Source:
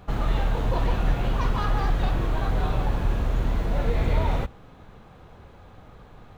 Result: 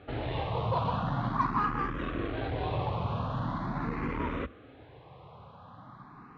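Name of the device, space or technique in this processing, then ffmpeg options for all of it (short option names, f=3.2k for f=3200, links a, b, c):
barber-pole phaser into a guitar amplifier: -filter_complex "[0:a]asplit=2[a][b];[b]afreqshift=0.43[c];[a][c]amix=inputs=2:normalize=1,asoftclip=type=tanh:threshold=-20dB,highpass=100,equalizer=f=130:t=q:w=4:g=4,equalizer=f=280:t=q:w=4:g=5,equalizer=f=1.1k:t=q:w=4:g=9,lowpass=f=4.2k:w=0.5412,lowpass=f=4.2k:w=1.3066"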